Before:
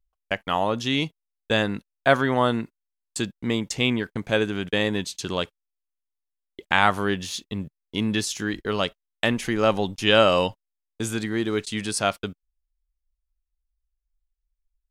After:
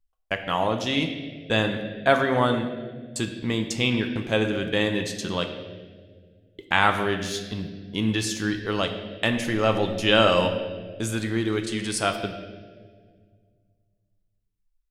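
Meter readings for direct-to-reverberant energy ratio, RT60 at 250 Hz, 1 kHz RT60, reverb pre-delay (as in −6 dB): 4.5 dB, 2.5 s, 1.4 s, 6 ms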